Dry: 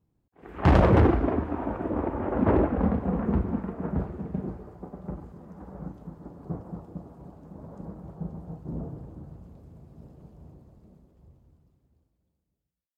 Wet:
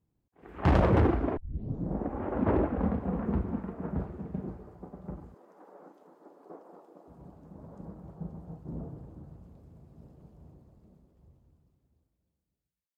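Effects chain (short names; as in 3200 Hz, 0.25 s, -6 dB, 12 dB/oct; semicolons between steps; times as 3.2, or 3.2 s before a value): 1.37 tape start 0.84 s; 5.34–7.08 HPF 340 Hz 24 dB/oct; gain -4.5 dB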